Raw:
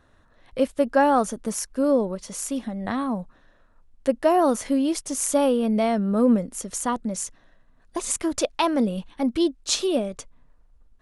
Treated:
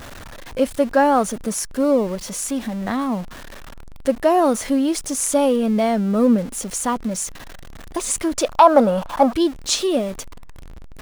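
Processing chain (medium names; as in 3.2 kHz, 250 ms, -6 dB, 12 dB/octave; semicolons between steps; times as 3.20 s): jump at every zero crossing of -34 dBFS; 8.49–9.33 s: high-order bell 900 Hz +14.5 dB; loudness maximiser +3.5 dB; trim -1 dB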